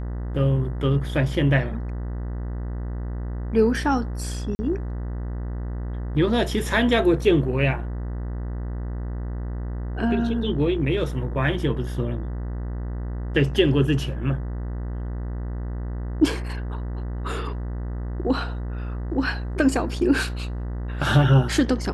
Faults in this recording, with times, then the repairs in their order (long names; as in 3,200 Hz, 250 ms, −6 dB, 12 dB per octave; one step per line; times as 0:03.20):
mains buzz 60 Hz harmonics 33 −29 dBFS
0:04.55–0:04.59: drop-out 40 ms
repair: hum removal 60 Hz, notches 33
repair the gap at 0:04.55, 40 ms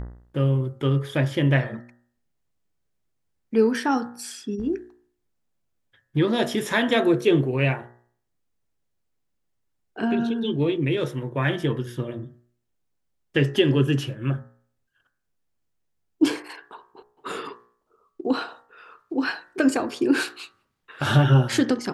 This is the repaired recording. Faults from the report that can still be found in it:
none of them is left